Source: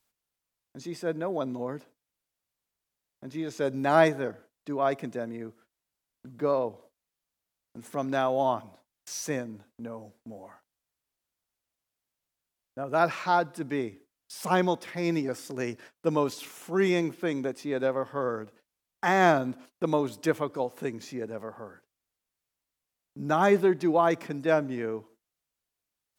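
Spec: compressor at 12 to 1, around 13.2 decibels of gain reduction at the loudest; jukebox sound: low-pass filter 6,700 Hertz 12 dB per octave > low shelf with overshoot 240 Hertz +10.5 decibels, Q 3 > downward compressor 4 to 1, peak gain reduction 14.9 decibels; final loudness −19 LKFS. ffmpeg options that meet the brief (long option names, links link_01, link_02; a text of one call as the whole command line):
ffmpeg -i in.wav -af "acompressor=threshold=-28dB:ratio=12,lowpass=6700,lowshelf=frequency=240:width_type=q:width=3:gain=10.5,acompressor=threshold=-36dB:ratio=4,volume=21dB" out.wav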